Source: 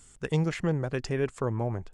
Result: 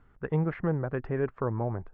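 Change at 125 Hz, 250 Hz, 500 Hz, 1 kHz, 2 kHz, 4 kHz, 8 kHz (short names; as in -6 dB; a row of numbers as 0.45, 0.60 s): -1.0 dB, -1.0 dB, -0.5 dB, +0.5 dB, -3.0 dB, under -15 dB, under -35 dB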